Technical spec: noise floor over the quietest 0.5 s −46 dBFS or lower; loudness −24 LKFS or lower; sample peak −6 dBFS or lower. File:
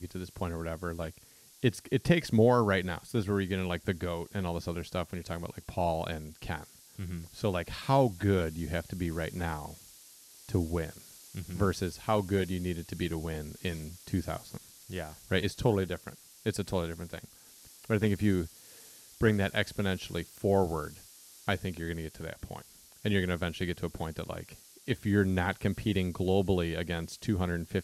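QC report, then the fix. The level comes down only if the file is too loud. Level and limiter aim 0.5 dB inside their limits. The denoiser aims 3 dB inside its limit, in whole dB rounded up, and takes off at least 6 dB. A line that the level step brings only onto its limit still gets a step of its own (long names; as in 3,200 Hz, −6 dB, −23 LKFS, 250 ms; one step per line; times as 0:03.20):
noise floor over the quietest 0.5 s −57 dBFS: in spec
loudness −32.0 LKFS: in spec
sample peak −10.5 dBFS: in spec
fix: no processing needed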